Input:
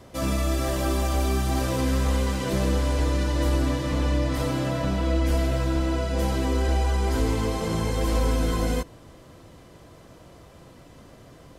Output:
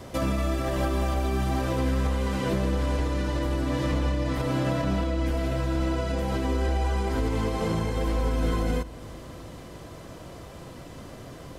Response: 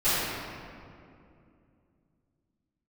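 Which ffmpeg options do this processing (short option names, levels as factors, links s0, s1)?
-filter_complex "[0:a]acrossover=split=3400[s0][s1];[s1]acompressor=threshold=0.00562:ratio=4:attack=1:release=60[s2];[s0][s2]amix=inputs=2:normalize=0,alimiter=limit=0.0668:level=0:latency=1:release=250,asplit=2[s3][s4];[1:a]atrim=start_sample=2205[s5];[s4][s5]afir=irnorm=-1:irlink=0,volume=0.0211[s6];[s3][s6]amix=inputs=2:normalize=0,volume=2"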